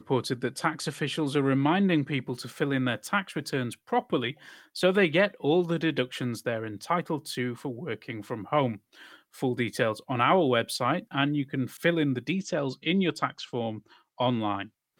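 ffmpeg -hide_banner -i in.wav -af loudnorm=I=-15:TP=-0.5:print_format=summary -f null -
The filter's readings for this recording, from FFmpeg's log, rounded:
Input Integrated:    -28.4 LUFS
Input True Peak:      -9.2 dBTP
Input LRA:             4.2 LU
Input Threshold:     -38.7 LUFS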